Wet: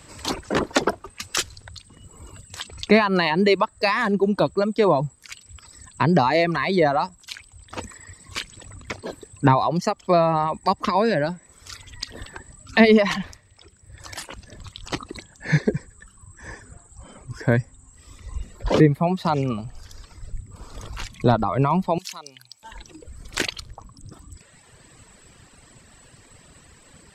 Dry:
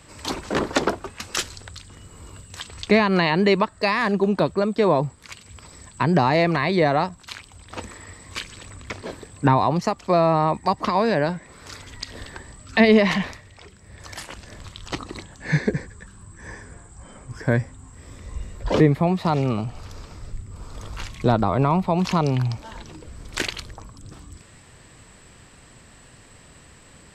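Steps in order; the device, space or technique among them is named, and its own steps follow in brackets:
reverb reduction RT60 1.6 s
exciter from parts (in parallel at −12 dB: high-pass filter 3,200 Hz 12 dB per octave + soft clipping −29 dBFS, distortion −8 dB)
0:21.98–0:22.63: on the sum: first difference
level +1.5 dB

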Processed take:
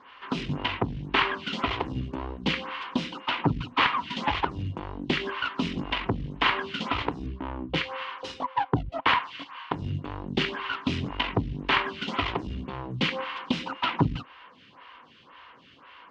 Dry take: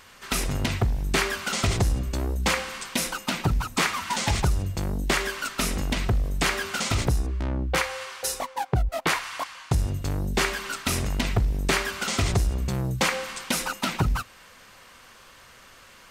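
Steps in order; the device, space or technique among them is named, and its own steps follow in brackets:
vibe pedal into a guitar amplifier (phaser with staggered stages 1.9 Hz; tube saturation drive 18 dB, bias 0.8; loudspeaker in its box 80–3,700 Hz, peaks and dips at 150 Hz +4 dB, 280 Hz +8 dB, 610 Hz −4 dB, 1,000 Hz +9 dB, 3,000 Hz +7 dB)
level +5 dB

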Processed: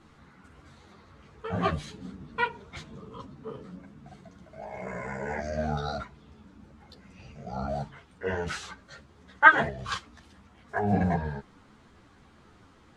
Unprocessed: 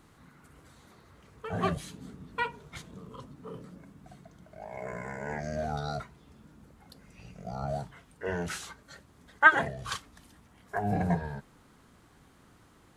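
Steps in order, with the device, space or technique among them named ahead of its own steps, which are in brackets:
0:04.13–0:05.49: high-shelf EQ 6,100 Hz +5.5 dB
string-machine ensemble chorus (string-ensemble chorus; low-pass filter 5,700 Hz 12 dB per octave)
level +6 dB

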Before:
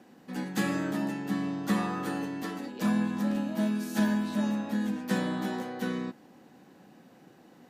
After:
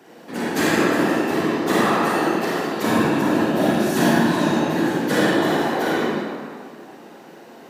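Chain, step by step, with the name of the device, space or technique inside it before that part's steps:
whispering ghost (random phases in short frames; high-pass filter 300 Hz 12 dB per octave; convolution reverb RT60 1.9 s, pre-delay 31 ms, DRR −5.5 dB)
level +8.5 dB

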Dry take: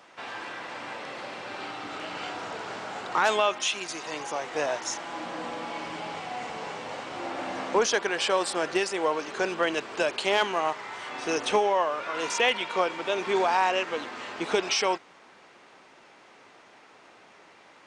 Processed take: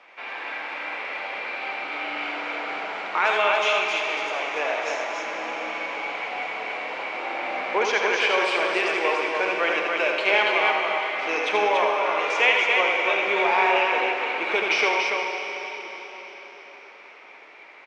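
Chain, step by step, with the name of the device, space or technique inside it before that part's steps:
station announcement (band-pass filter 380–3,600 Hz; parametric band 2,300 Hz +12 dB 0.33 octaves; loudspeakers that aren't time-aligned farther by 28 metres −5 dB, 98 metres −4 dB; convolution reverb RT60 4.6 s, pre-delay 46 ms, DRR 3.5 dB)

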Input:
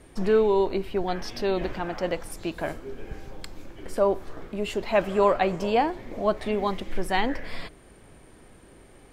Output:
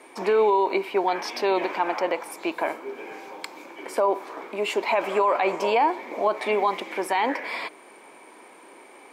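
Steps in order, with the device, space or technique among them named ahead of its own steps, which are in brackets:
laptop speaker (high-pass filter 290 Hz 24 dB per octave; parametric band 950 Hz +11 dB 0.54 octaves; parametric band 2,300 Hz +11.5 dB 0.21 octaves; brickwall limiter −16 dBFS, peak gain reduction 12.5 dB)
0:01.99–0:02.95: parametric band 6,400 Hz −4 dB 2 octaves
level +3.5 dB

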